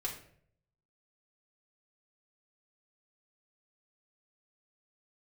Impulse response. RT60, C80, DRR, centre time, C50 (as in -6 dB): 0.60 s, 12.0 dB, -3.0 dB, 20 ms, 8.5 dB